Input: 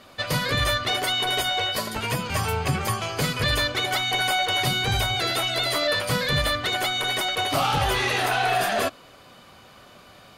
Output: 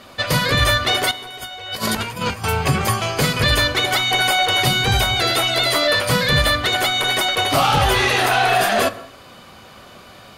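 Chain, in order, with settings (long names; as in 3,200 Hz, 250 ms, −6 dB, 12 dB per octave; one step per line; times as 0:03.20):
0:01.11–0:02.44: compressor whose output falls as the input rises −32 dBFS, ratio −0.5
on a send: convolution reverb, pre-delay 7 ms, DRR 13 dB
on the sum: level +6.5 dB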